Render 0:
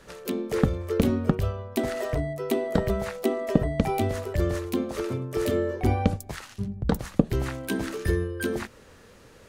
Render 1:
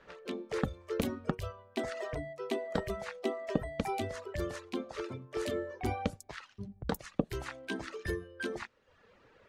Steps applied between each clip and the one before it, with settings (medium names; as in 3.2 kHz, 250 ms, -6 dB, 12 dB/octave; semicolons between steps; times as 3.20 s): reverb removal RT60 0.82 s; level-controlled noise filter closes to 2.6 kHz, open at -20 dBFS; bass shelf 350 Hz -9.5 dB; trim -4 dB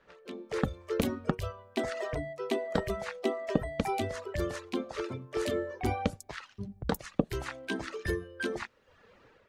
level rider gain up to 9 dB; trim -5.5 dB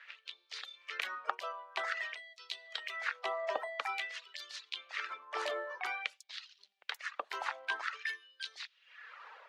LFO high-pass sine 0.5 Hz 830–4200 Hz; three-band isolator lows -23 dB, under 350 Hz, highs -16 dB, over 5.4 kHz; three bands compressed up and down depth 40%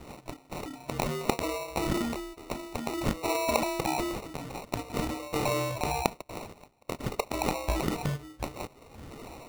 sample-and-hold 27×; transient shaper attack 0 dB, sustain +8 dB; trim +7.5 dB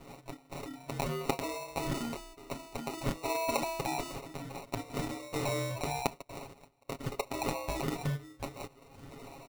comb 7.3 ms, depth 73%; trim -6 dB